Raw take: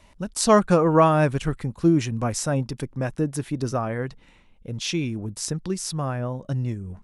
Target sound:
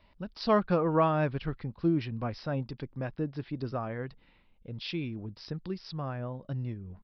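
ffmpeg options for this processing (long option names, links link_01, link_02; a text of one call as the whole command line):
ffmpeg -i in.wav -af "aresample=11025,aresample=44100,volume=-8.5dB" out.wav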